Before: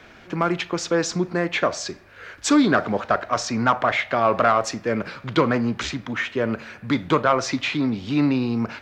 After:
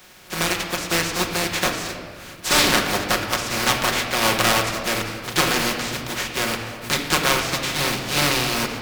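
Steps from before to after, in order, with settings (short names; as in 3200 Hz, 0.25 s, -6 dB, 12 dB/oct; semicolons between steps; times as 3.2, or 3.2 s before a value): spectral contrast lowered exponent 0.24; on a send at -1 dB: reverb RT60 2.0 s, pre-delay 5 ms; on the sum: Doppler distortion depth 0.19 ms; gain -1.5 dB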